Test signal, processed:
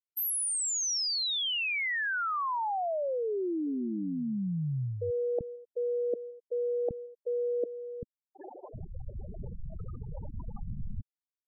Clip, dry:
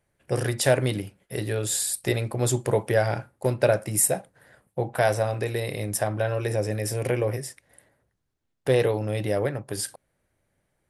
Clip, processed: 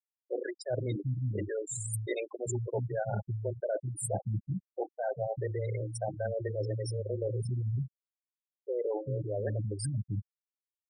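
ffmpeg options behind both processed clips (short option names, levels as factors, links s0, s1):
-filter_complex "[0:a]equalizer=f=5900:t=o:w=0.54:g=4.5,acrossover=split=250[s0][s1];[s0]adelay=390[s2];[s2][s1]amix=inputs=2:normalize=0,areverse,acompressor=threshold=0.0112:ratio=10,areverse,aeval=exprs='0.0398*(cos(1*acos(clip(val(0)/0.0398,-1,1)))-cos(1*PI/2))+0.000447*(cos(4*acos(clip(val(0)/0.0398,-1,1)))-cos(4*PI/2))+0.000251*(cos(5*acos(clip(val(0)/0.0398,-1,1)))-cos(5*PI/2))':c=same,afftfilt=real='re*gte(hypot(re,im),0.02)':imag='im*gte(hypot(re,im),0.02)':win_size=1024:overlap=0.75,volume=2.82"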